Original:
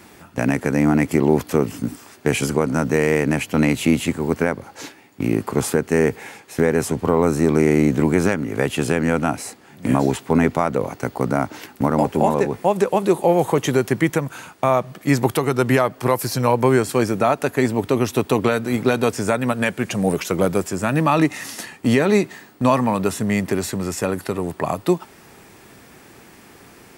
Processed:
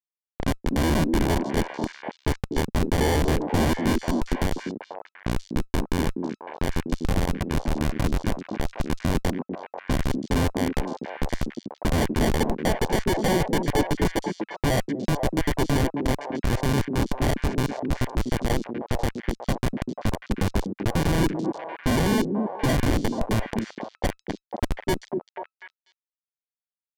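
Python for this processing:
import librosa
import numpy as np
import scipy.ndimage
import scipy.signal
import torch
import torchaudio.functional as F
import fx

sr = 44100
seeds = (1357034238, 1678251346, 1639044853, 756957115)

p1 = fx.pitch_trill(x, sr, semitones=1.5, every_ms=75)
p2 = scipy.signal.sosfilt(scipy.signal.ellip(4, 1.0, 40, 9000.0, 'lowpass', fs=sr, output='sos'), p1)
p3 = fx.low_shelf(p2, sr, hz=190.0, db=-5.5)
p4 = fx.level_steps(p3, sr, step_db=22)
p5 = p3 + F.gain(torch.from_numpy(p4), 1.0).numpy()
p6 = fx.phaser_stages(p5, sr, stages=4, low_hz=390.0, high_hz=3700.0, hz=0.094, feedback_pct=5)
p7 = fx.schmitt(p6, sr, flips_db=-15.0)
p8 = fx.sample_hold(p7, sr, seeds[0], rate_hz=1300.0, jitter_pct=0)
p9 = fx.echo_stepped(p8, sr, ms=245, hz=280.0, octaves=1.4, feedback_pct=70, wet_db=0.0)
y = fx.env_lowpass(p9, sr, base_hz=1400.0, full_db=-21.0)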